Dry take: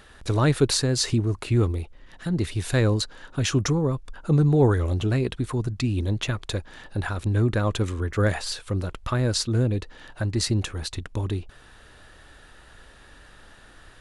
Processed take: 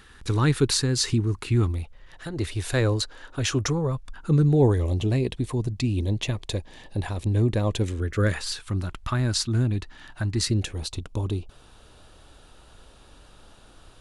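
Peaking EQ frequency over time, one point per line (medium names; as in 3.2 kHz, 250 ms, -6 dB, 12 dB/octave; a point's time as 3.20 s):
peaking EQ -14.5 dB 0.45 oct
1.48 s 620 Hz
2.33 s 180 Hz
3.62 s 180 Hz
4.68 s 1.4 kHz
7.70 s 1.4 kHz
8.72 s 490 Hz
10.31 s 490 Hz
10.85 s 1.8 kHz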